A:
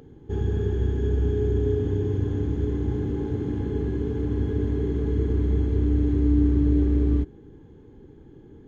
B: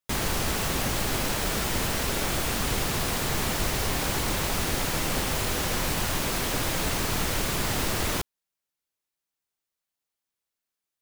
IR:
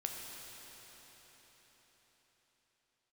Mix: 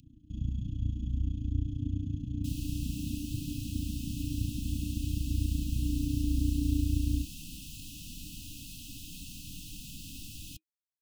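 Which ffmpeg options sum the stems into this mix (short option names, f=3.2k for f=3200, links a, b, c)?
-filter_complex "[0:a]tremolo=f=29:d=0.947,volume=0.5dB[a];[1:a]adelay=2350,volume=-11.5dB[b];[a][b]amix=inputs=2:normalize=0,afftfilt=real='re*(1-between(b*sr/4096,320,2500))':imag='im*(1-between(b*sr/4096,320,2500))':win_size=4096:overlap=0.75,acrossover=split=150|3000[c][d][e];[d]acompressor=threshold=-26dB:ratio=6[f];[c][f][e]amix=inputs=3:normalize=0,flanger=delay=1.9:depth=4.9:regen=-68:speed=0.57:shape=triangular"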